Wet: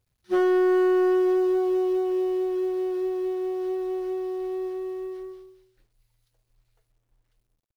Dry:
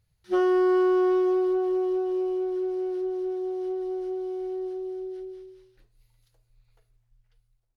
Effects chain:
mu-law and A-law mismatch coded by A
soft clipping −18 dBFS, distortion −19 dB
level +3.5 dB

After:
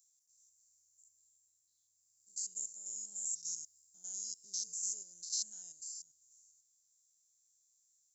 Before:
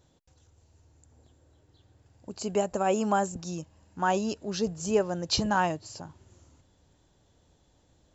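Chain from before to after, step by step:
spectrum averaged block by block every 100 ms
speech leveller within 4 dB 0.5 s
inverse Chebyshev high-pass filter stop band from 2,700 Hz, stop band 50 dB
level +9 dB

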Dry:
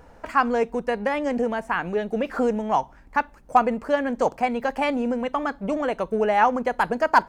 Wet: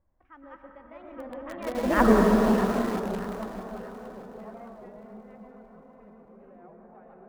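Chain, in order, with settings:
feedback delay that plays each chunk backwards 505 ms, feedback 44%, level 0 dB
source passing by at 0:02.02, 48 m/s, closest 2.6 metres
high-shelf EQ 5,200 Hz +6 dB
on a send at −2 dB: convolution reverb RT60 3.6 s, pre-delay 98 ms
on the sum: low-pass that shuts in the quiet parts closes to 2,000 Hz, open at −27 dBFS
spectral tilt −2.5 dB per octave
treble cut that deepens with the level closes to 2,200 Hz, closed at −30 dBFS
in parallel at −8 dB: bit reduction 5 bits
on the sum: delay that swaps between a low-pass and a high-pass 313 ms, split 830 Hz, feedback 63%, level −8 dB
wow of a warped record 33 1/3 rpm, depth 100 cents

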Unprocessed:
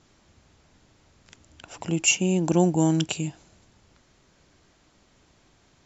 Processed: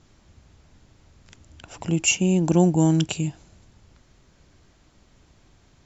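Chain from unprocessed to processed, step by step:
low-shelf EQ 140 Hz +10 dB

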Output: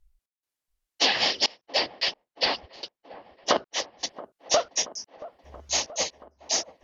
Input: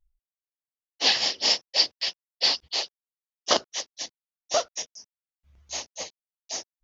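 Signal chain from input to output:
treble cut that deepens with the level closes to 2,600 Hz, closed at −18.5 dBFS
0:01.66–0:04.04: high-shelf EQ 3,800 Hz −10.5 dB
downward compressor 6 to 1, threshold −27 dBFS, peak gain reduction 9 dB
gate pattern "xxx..xxxxxxxxx" 175 BPM −24 dB
delay with a low-pass on its return 678 ms, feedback 71%, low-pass 1,100 Hz, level −16.5 dB
level +8.5 dB

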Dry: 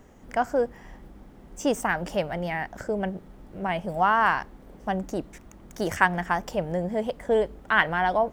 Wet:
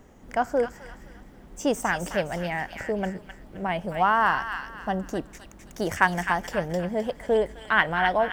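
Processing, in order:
0:04.18–0:05.03: notch filter 2,300 Hz, Q 5
delay with a high-pass on its return 260 ms, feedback 34%, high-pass 1,700 Hz, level −4 dB

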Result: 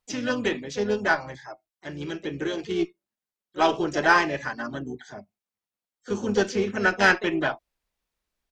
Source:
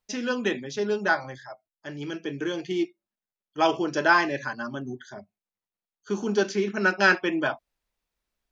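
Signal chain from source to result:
pitch-shifted copies added −12 semitones −15 dB, +3 semitones −9 dB
harmonic generator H 6 −29 dB, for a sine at −4 dBFS

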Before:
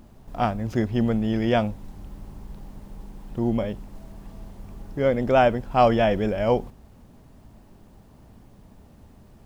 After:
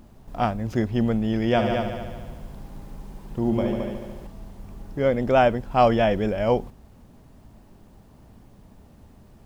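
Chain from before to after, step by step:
0:01.48–0:04.27: echo machine with several playback heads 73 ms, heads all three, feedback 49%, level −8 dB

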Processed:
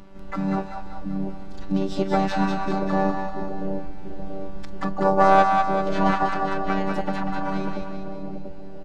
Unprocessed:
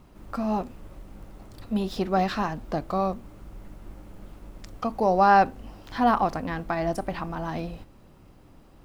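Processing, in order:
stylus tracing distortion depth 0.085 ms
low-pass filter 4,700 Hz 12 dB per octave
low-shelf EQ 280 Hz +2.5 dB
in parallel at +1.5 dB: downward compressor, threshold −35 dBFS, peak gain reduction 20.5 dB
on the sum: phases set to zero 193 Hz
pitch-shifted copies added −4 semitones −15 dB, −3 semitones −14 dB, +7 semitones −7 dB
on a send: echo with a time of its own for lows and highs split 620 Hz, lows 686 ms, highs 194 ms, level −4 dB
on the sum: level −1 dB

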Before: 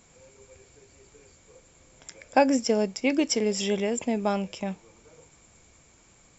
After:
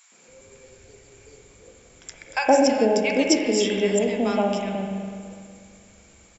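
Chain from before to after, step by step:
three-band delay without the direct sound highs, mids, lows 120/280 ms, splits 170/1,000 Hz
spring reverb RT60 2.1 s, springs 41/59 ms, chirp 75 ms, DRR 2 dB
level +4 dB

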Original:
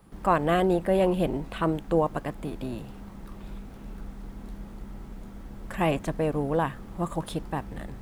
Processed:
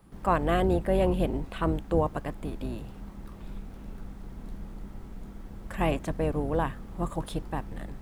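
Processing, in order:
sub-octave generator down 2 octaves, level 0 dB
level −2.5 dB

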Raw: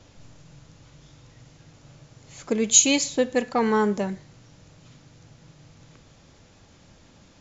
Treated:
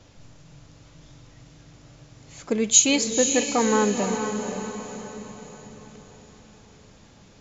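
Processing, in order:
feedback delay with all-pass diffusion 497 ms, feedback 48%, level −6.5 dB

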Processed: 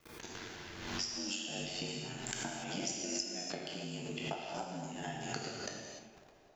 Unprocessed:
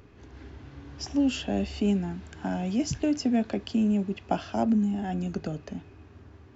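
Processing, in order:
peak hold with a decay on every bin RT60 0.56 s
noise gate −45 dBFS, range −51 dB
spectral tilt +4 dB per octave
transient designer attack +11 dB, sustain −5 dB
downward compressor 5 to 1, threshold −40 dBFS, peak gain reduction 25.5 dB
ring modulation 46 Hz
on a send: feedback echo with a band-pass in the loop 273 ms, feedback 73%, band-pass 610 Hz, level −17 dB
on the sum: reverb whose tail is shaped and stops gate 320 ms flat, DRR 0 dB
background raised ahead of every attack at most 48 dB per second
level +1.5 dB

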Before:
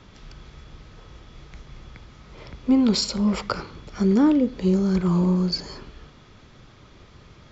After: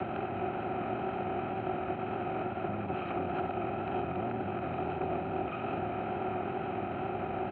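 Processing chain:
compressor on every frequency bin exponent 0.2
frequency shifter +120 Hz
brickwall limiter −9 dBFS, peak gain reduction 7 dB
pitch shifter −10.5 semitones
pair of resonant band-passes 990 Hz, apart 0.92 octaves
tape wow and flutter 25 cents
pitch-shifted copies added −12 semitones −2 dB, −5 semitones −17 dB, +4 semitones −15 dB
high-frequency loss of the air 420 metres

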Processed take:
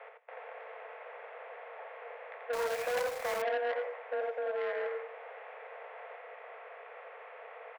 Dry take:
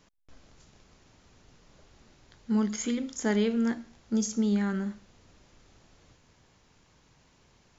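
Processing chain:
compressor on every frequency bin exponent 0.6
0:04.28–0:04.85: output level in coarse steps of 15 dB
brickwall limiter −21.5 dBFS, peak gain reduction 9 dB
single-sideband voice off tune +250 Hz 230–2,300 Hz
single-tap delay 86 ms −5 dB
0:02.53–0:03.42: log-companded quantiser 4 bits
far-end echo of a speakerphone 110 ms, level −22 dB
saturating transformer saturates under 1,500 Hz

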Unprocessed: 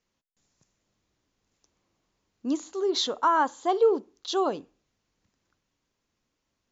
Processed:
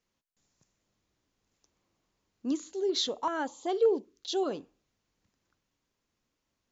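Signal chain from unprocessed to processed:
0:02.51–0:04.51: notch on a step sequencer 5.2 Hz 790–1,600 Hz
level −2.5 dB

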